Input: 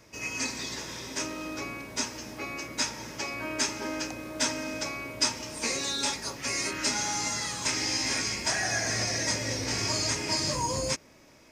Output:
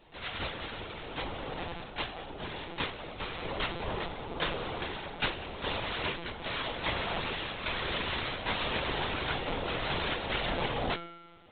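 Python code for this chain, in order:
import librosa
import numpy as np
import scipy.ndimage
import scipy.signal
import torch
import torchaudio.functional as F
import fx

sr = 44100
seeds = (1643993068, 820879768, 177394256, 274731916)

y = fx.noise_vocoder(x, sr, seeds[0], bands=2)
y = fx.comb_fb(y, sr, f0_hz=170.0, decay_s=1.4, harmonics='all', damping=0.0, mix_pct=70)
y = fx.room_shoebox(y, sr, seeds[1], volume_m3=910.0, walls='furnished', distance_m=0.72)
y = fx.lpc_vocoder(y, sr, seeds[2], excitation='pitch_kept', order=16)
y = y * librosa.db_to_amplitude(8.5)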